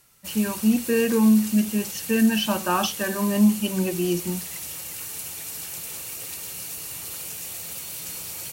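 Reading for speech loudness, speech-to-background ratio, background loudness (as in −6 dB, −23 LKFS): −22.5 LKFS, 9.5 dB, −32.0 LKFS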